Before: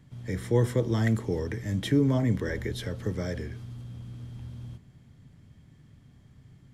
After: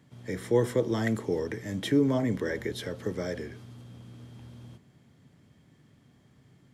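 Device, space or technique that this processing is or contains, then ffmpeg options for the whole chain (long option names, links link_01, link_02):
filter by subtraction: -filter_complex "[0:a]asplit=2[link_01][link_02];[link_02]lowpass=390,volume=-1[link_03];[link_01][link_03]amix=inputs=2:normalize=0"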